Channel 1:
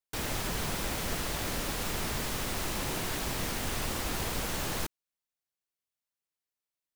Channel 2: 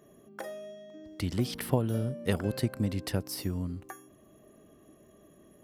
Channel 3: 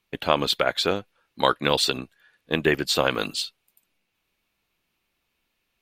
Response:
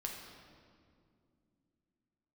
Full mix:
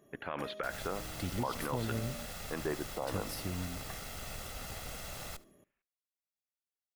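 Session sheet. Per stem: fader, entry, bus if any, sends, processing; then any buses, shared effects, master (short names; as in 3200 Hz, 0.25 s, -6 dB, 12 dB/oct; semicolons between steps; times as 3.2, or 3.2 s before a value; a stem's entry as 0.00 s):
-8.5 dB, 0.50 s, no send, echo send -21 dB, minimum comb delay 1.5 ms
-6.0 dB, 0.00 s, muted 2.26–3.01, no send, echo send -22 dB, dry
-12.5 dB, 0.00 s, no send, echo send -22 dB, LFO low-pass sine 0.58 Hz 850–1900 Hz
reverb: off
echo: feedback echo 73 ms, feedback 22%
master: limiter -23.5 dBFS, peak gain reduction 10.5 dB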